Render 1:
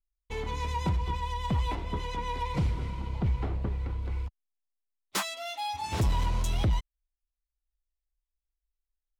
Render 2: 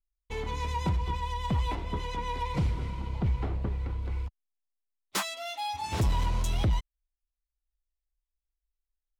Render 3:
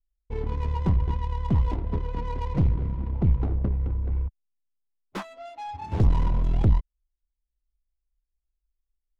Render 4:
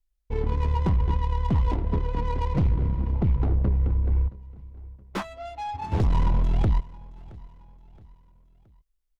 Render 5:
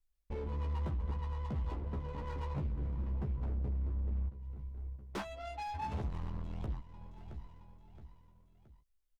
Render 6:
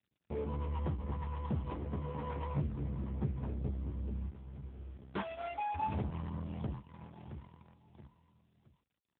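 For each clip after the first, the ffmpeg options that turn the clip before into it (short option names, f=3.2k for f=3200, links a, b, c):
-af anull
-af "tiltshelf=f=640:g=6.5,aeval=exprs='0.211*(cos(1*acos(clip(val(0)/0.211,-1,1)))-cos(1*PI/2))+0.0596*(cos(2*acos(clip(val(0)/0.211,-1,1)))-cos(2*PI/2))':c=same,adynamicsmooth=sensitivity=7.5:basefreq=730"
-filter_complex "[0:a]acrossover=split=800[a][b];[a]alimiter=limit=-18.5dB:level=0:latency=1:release=19[c];[c][b]amix=inputs=2:normalize=0,aecho=1:1:671|1342|2013:0.0794|0.035|0.0154,volume=3.5dB"
-filter_complex "[0:a]acompressor=threshold=-31dB:ratio=3,asoftclip=type=hard:threshold=-31dB,asplit=2[a][b];[b]adelay=14,volume=-4dB[c];[a][c]amix=inputs=2:normalize=0,volume=-4.5dB"
-filter_complex "[0:a]asplit=2[a][b];[b]aeval=exprs='val(0)*gte(abs(val(0)),0.00473)':c=same,volume=-3.5dB[c];[a][c]amix=inputs=2:normalize=0" -ar 8000 -c:a libopencore_amrnb -b:a 7950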